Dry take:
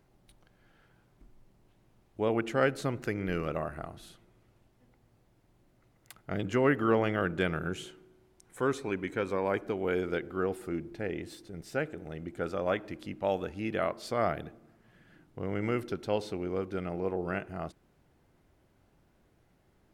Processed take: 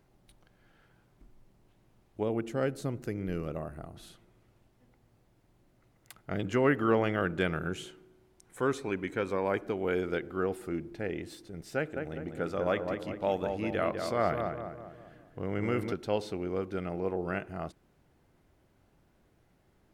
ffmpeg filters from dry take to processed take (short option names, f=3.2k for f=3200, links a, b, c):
-filter_complex "[0:a]asettb=1/sr,asplit=3[a][b][c];[a]atrim=end=2.234[d];[b]atrim=start=2.23:end=3.96,asetpts=PTS-STARTPTS,afade=t=in:d=0.004:c=qsin,afade=t=out:st=1.726:d=0.004:c=qsin,equalizer=f=1.8k:w=0.4:g=-9.5[e];[c]atrim=start=3.956[f];[d][e]acrossfade=d=0.004:c1=hsin:c2=qsin[g];[g][f]acrossfade=d=0.004:c1=qsin:c2=hsin,asettb=1/sr,asplit=3[h][i][j];[h]atrim=end=11.764[k];[i]atrim=start=11.76:end=15.93,asetpts=PTS-STARTPTS,afade=t=in:d=0.004:c=qsin,afade=t=out:st=4.166:d=0.004:c=qsin,asplit=2[l][m];[m]adelay=201,lowpass=f=1.9k:p=1,volume=-5dB,asplit=2[n][o];[o]adelay=201,lowpass=f=1.9k:p=1,volume=0.49,asplit=2[p][q];[q]adelay=201,lowpass=f=1.9k:p=1,volume=0.49,asplit=2[r][s];[s]adelay=201,lowpass=f=1.9k:p=1,volume=0.49,asplit=2[t][u];[u]adelay=201,lowpass=f=1.9k:p=1,volume=0.49,asplit=2[v][w];[w]adelay=201,lowpass=f=1.9k:p=1,volume=0.49[x];[l][n][p][r][t][v][x]amix=inputs=7:normalize=0,atrim=end_sample=183897[y];[j]atrim=start=15.926[z];[k][y]acrossfade=d=0.004:c1=hsin:c2=qsin[aa];[aa][z]acrossfade=d=0.004:c1=qsin:c2=hsin"